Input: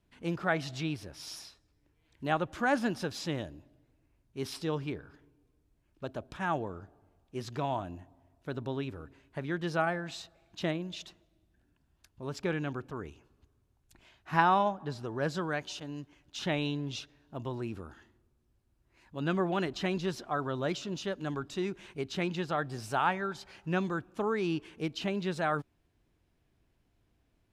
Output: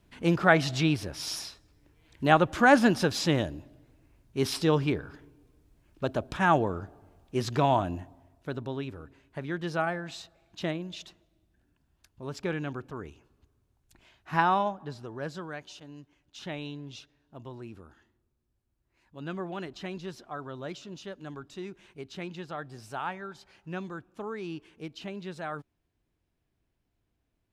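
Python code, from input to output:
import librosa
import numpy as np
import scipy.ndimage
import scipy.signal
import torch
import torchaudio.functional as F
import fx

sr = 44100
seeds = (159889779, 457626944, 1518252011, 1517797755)

y = fx.gain(x, sr, db=fx.line((7.98, 9.0), (8.68, 0.5), (14.52, 0.5), (15.52, -6.0)))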